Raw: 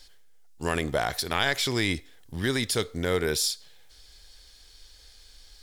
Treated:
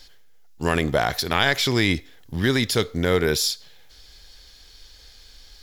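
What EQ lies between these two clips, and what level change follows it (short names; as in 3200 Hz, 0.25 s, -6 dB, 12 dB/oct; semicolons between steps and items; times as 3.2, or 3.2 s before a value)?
tone controls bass +6 dB, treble -1 dB; low shelf 120 Hz -8 dB; bell 8800 Hz -11.5 dB 0.27 oct; +5.5 dB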